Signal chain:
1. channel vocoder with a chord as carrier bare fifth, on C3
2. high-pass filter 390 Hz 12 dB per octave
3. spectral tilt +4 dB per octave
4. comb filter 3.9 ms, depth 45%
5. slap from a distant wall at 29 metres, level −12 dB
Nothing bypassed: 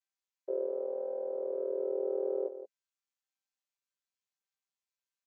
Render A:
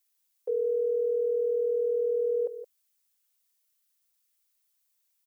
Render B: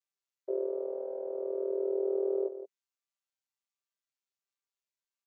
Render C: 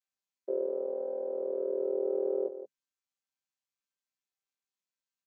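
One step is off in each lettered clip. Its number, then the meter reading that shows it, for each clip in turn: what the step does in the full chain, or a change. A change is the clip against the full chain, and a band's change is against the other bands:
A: 1, change in crest factor −5.5 dB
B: 4, change in integrated loudness +1.5 LU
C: 2, change in integrated loudness +2.0 LU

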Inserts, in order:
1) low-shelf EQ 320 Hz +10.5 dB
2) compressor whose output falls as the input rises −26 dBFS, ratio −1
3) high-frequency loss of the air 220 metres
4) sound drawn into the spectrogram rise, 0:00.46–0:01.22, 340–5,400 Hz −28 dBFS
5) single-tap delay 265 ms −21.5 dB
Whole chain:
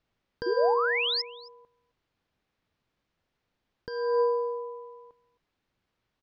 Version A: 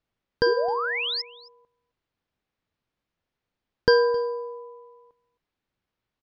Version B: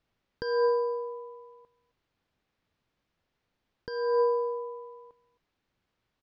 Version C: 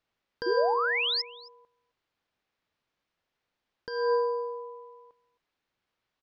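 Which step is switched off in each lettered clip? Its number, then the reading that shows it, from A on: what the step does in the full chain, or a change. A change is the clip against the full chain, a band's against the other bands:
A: 2, change in crest factor +4.5 dB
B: 4, 4 kHz band −13.5 dB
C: 1, 500 Hz band −2.0 dB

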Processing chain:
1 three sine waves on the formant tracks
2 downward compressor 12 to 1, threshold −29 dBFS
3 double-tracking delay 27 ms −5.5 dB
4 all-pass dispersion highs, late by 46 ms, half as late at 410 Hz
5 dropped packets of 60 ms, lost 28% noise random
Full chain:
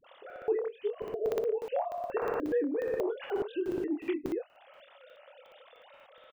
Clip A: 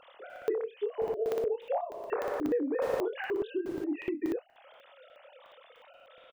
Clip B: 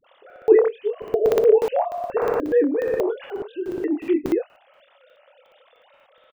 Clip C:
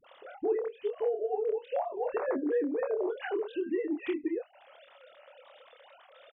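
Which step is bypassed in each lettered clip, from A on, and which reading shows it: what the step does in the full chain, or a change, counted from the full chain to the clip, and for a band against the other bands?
4, 2 kHz band +2.5 dB
2, average gain reduction 9.0 dB
5, 4 kHz band −1.5 dB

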